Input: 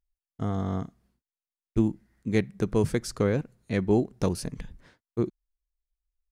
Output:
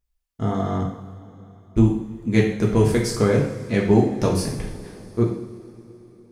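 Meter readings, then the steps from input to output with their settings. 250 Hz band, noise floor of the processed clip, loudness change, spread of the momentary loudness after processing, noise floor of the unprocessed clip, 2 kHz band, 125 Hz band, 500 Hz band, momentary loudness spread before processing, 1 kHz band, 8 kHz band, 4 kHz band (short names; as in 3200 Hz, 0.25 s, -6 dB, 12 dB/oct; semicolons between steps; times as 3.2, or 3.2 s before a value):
+7.0 dB, -70 dBFS, +7.5 dB, 16 LU, under -85 dBFS, +7.5 dB, +8.5 dB, +7.0 dB, 13 LU, +8.5 dB, +7.5 dB, +8.0 dB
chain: two-slope reverb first 0.6 s, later 3.7 s, from -18 dB, DRR -2.5 dB; gain +3.5 dB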